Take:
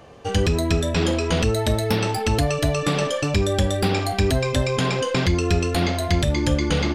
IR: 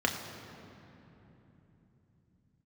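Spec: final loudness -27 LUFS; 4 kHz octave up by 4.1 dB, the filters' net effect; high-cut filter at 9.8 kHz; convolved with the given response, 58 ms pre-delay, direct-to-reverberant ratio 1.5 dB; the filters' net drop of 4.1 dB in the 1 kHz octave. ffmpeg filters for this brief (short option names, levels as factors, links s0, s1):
-filter_complex "[0:a]lowpass=9800,equalizer=f=1000:t=o:g=-6,equalizer=f=4000:t=o:g=5.5,asplit=2[s0][s1];[1:a]atrim=start_sample=2205,adelay=58[s2];[s1][s2]afir=irnorm=-1:irlink=0,volume=0.266[s3];[s0][s3]amix=inputs=2:normalize=0,volume=0.376"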